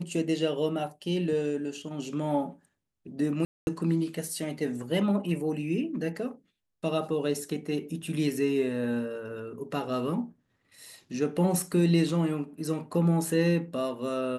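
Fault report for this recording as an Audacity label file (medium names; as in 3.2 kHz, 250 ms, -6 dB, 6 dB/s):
3.450000	3.670000	dropout 221 ms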